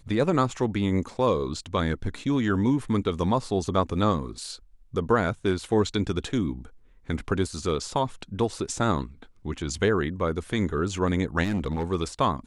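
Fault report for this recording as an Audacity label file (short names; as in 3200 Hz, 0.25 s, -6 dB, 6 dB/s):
11.430000	11.840000	clipped -22.5 dBFS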